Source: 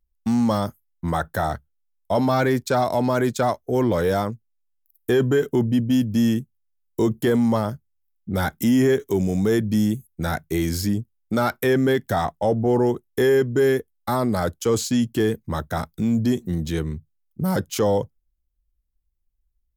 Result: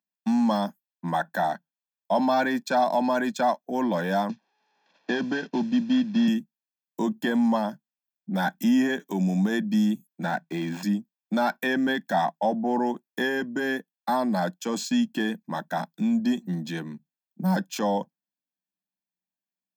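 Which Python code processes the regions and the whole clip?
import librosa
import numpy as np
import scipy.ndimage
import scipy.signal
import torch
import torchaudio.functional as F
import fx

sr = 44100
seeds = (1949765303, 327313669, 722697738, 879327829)

y = fx.chain(x, sr, fx.cvsd(bps=32000),
    fx.band_squash(depth_pct=40), at=(4.29, 6.28))
y = fx.chain(y, sr, fx.median_filter(points=9),
    fx.band_squash(depth_pct=40), at=(10.23, 10.83))
y = scipy.signal.sosfilt(scipy.signal.cheby1(5, 1.0, 180.0, 'highpass', fs=sr, output='sos'), y)
y = fx.peak_eq(y, sr, hz=11000.0, db=-12.5, octaves=1.1)
y = y + 0.75 * np.pad(y, (int(1.2 * sr / 1000.0), 0))[:len(y)]
y = y * librosa.db_to_amplitude(-2.5)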